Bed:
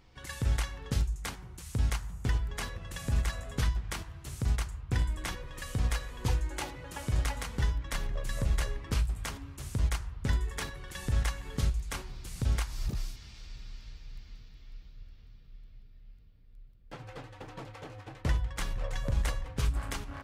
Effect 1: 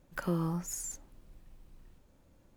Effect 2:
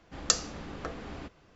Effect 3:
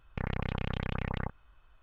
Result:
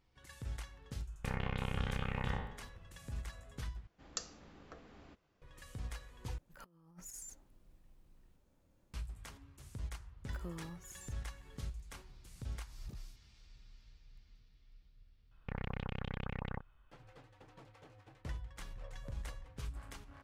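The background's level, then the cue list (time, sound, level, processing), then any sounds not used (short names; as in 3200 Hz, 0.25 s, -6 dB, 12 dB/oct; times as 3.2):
bed -14 dB
1.07 add 3 -6 dB + spectral trails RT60 0.74 s
3.87 replace with 2 -16 dB
6.38 replace with 1 -13 dB + negative-ratio compressor -40 dBFS, ratio -0.5
10.17 add 1 -14.5 dB
15.31 add 3 -7 dB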